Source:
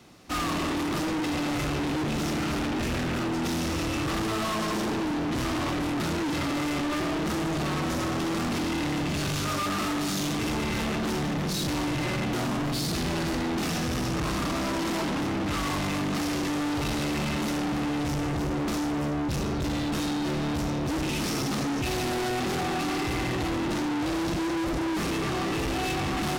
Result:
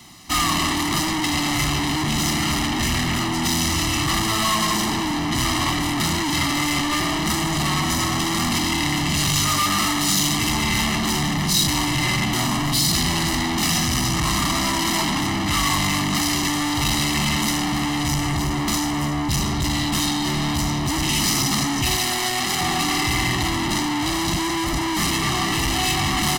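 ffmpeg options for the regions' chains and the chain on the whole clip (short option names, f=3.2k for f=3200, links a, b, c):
-filter_complex "[0:a]asettb=1/sr,asplit=3[a][b][c];[a]atrim=end=21.964[d];[b]atrim=start=21.96:end=22.61,asetpts=PTS-STARTPTS,afade=t=in:d=0.004:c=qsin,afade=t=out:st=0.646:d=0.004:c=qsin,lowshelf=f=290:g=-8.5,bandreject=f=950:w=22[e];[c]atrim=start=22.606[f];[d][e]acrossfade=d=0.004:c1=hsin:c2=qsin[g];[g][f]acrossfade=d=0.004:c1=qsin:c2=hsin,highshelf=f=2.1k:g=10.5,aecho=1:1:1:0.79,volume=2.5dB"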